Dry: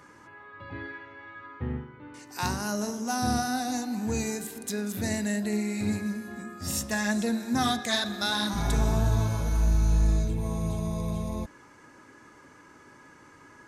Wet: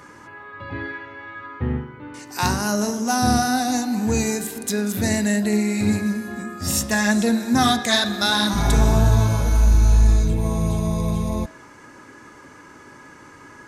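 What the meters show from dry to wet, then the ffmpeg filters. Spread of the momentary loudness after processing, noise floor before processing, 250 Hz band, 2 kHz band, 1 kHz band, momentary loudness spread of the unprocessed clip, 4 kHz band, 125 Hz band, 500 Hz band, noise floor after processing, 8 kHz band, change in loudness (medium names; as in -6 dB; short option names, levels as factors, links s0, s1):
16 LU, -54 dBFS, +8.5 dB, +8.5 dB, +8.5 dB, 16 LU, +8.5 dB, +8.0 dB, +8.0 dB, -45 dBFS, +8.5 dB, +8.5 dB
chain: -af "bandreject=f=160.8:t=h:w=4,bandreject=f=321.6:t=h:w=4,bandreject=f=482.4:t=h:w=4,bandreject=f=643.2:t=h:w=4,bandreject=f=804:t=h:w=4,bandreject=f=964.8:t=h:w=4,bandreject=f=1125.6:t=h:w=4,bandreject=f=1286.4:t=h:w=4,bandreject=f=1447.2:t=h:w=4,bandreject=f=1608:t=h:w=4,bandreject=f=1768.8:t=h:w=4,bandreject=f=1929.6:t=h:w=4,bandreject=f=2090.4:t=h:w=4,bandreject=f=2251.2:t=h:w=4,bandreject=f=2412:t=h:w=4,bandreject=f=2572.8:t=h:w=4,bandreject=f=2733.6:t=h:w=4,bandreject=f=2894.4:t=h:w=4,bandreject=f=3055.2:t=h:w=4,bandreject=f=3216:t=h:w=4,bandreject=f=3376.8:t=h:w=4,bandreject=f=3537.6:t=h:w=4,bandreject=f=3698.4:t=h:w=4,bandreject=f=3859.2:t=h:w=4,bandreject=f=4020:t=h:w=4,bandreject=f=4180.8:t=h:w=4,bandreject=f=4341.6:t=h:w=4,bandreject=f=4502.4:t=h:w=4,bandreject=f=4663.2:t=h:w=4,bandreject=f=4824:t=h:w=4,bandreject=f=4984.8:t=h:w=4,volume=2.66"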